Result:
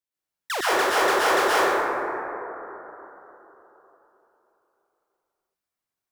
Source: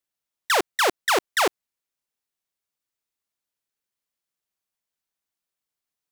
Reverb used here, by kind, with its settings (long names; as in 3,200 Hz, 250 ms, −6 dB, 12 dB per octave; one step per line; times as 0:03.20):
dense smooth reverb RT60 3.7 s, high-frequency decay 0.25×, pre-delay 100 ms, DRR −10 dB
level −8 dB